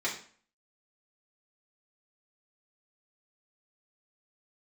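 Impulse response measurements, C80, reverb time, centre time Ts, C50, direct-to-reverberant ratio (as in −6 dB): 12.0 dB, 0.45 s, 24 ms, 8.0 dB, −5.5 dB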